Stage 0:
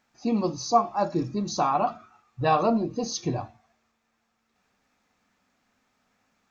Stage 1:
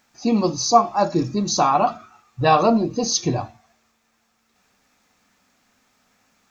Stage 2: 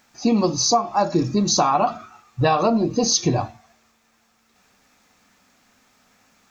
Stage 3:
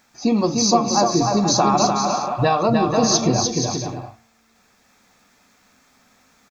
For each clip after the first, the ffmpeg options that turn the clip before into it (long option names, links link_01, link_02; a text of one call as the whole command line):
ffmpeg -i in.wav -af "highshelf=frequency=4500:gain=8.5,volume=6dB" out.wav
ffmpeg -i in.wav -af "acompressor=threshold=-18dB:ratio=10,volume=4dB" out.wav
ffmpeg -i in.wav -filter_complex "[0:a]bandreject=frequency=2900:width=14,asplit=2[link_01][link_02];[link_02]aecho=0:1:300|480|588|652.8|691.7:0.631|0.398|0.251|0.158|0.1[link_03];[link_01][link_03]amix=inputs=2:normalize=0" out.wav